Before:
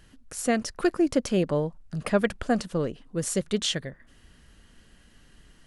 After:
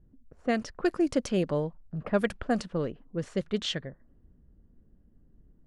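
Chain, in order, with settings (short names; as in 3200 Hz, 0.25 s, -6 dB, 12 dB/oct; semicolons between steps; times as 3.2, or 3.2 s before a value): low-pass opened by the level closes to 340 Hz, open at -19.5 dBFS; gain -3 dB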